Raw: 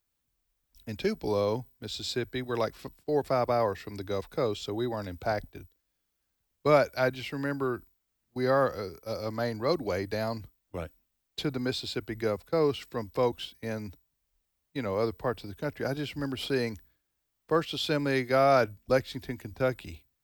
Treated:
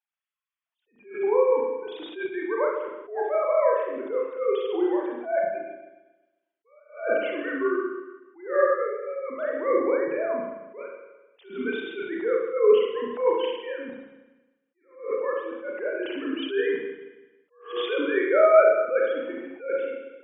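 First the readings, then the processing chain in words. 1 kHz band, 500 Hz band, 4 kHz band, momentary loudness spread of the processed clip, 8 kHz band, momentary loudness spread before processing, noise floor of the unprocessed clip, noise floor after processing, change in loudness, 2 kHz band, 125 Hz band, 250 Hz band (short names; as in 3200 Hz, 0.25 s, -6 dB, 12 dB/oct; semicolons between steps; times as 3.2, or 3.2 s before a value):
+2.0 dB, +6.0 dB, -4.0 dB, 16 LU, under -30 dB, 15 LU, -80 dBFS, -82 dBFS, +5.0 dB, +4.0 dB, under -25 dB, +1.0 dB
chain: sine-wave speech; spring tank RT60 1.1 s, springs 33/45 ms, chirp 75 ms, DRR -2 dB; attack slew limiter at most 140 dB/s; gain +2 dB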